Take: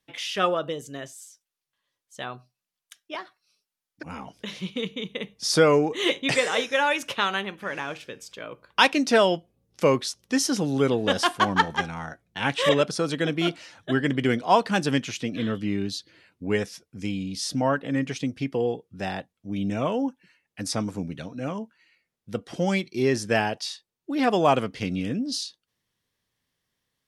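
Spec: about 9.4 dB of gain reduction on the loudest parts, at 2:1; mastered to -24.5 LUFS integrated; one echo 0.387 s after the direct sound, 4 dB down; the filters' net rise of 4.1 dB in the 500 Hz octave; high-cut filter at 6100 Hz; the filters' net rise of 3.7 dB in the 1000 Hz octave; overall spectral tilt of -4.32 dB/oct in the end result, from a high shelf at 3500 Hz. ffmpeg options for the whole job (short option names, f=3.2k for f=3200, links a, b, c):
-af "lowpass=6.1k,equalizer=f=500:t=o:g=4,equalizer=f=1k:t=o:g=3,highshelf=f=3.5k:g=4,acompressor=threshold=-28dB:ratio=2,aecho=1:1:387:0.631,volume=4dB"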